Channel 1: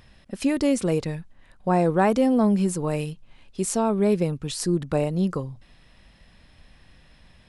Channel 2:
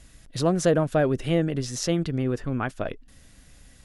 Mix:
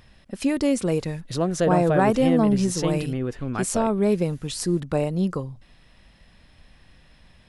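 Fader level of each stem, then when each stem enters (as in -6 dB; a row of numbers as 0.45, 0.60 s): 0.0, -1.5 dB; 0.00, 0.95 s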